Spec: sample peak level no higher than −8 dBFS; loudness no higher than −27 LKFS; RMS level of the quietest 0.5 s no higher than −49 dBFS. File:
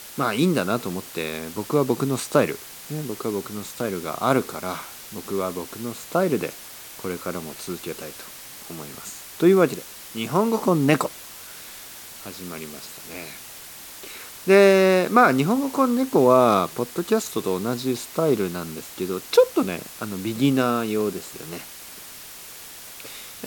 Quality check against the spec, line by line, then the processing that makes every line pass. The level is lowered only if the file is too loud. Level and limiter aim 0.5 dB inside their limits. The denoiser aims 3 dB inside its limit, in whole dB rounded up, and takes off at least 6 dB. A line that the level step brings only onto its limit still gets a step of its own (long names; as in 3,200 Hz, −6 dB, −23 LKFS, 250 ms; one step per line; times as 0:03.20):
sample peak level −3.5 dBFS: out of spec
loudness −22.5 LKFS: out of spec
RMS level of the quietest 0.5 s −41 dBFS: out of spec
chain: broadband denoise 6 dB, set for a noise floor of −41 dBFS
level −5 dB